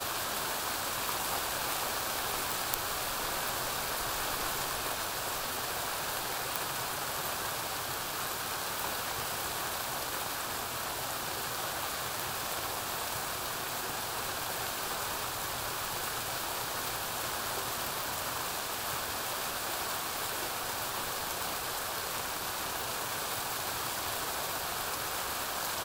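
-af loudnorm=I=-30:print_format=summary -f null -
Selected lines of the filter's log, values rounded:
Input Integrated:    -33.4 LUFS
Input True Peak:      -8.4 dBTP
Input LRA:             1.8 LU
Input Threshold:     -43.4 LUFS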